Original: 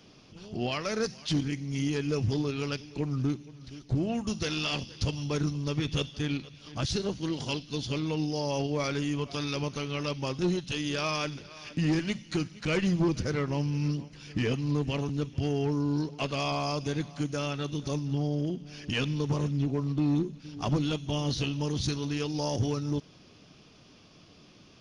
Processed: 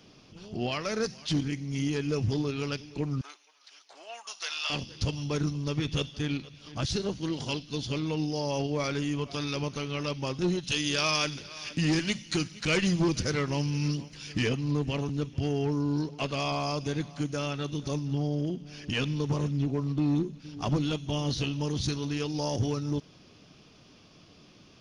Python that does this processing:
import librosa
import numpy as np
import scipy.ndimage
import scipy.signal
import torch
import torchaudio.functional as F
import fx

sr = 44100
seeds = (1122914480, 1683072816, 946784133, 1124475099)

y = fx.highpass(x, sr, hz=760.0, slope=24, at=(3.21, 4.7))
y = fx.high_shelf(y, sr, hz=2300.0, db=9.0, at=(10.63, 14.49))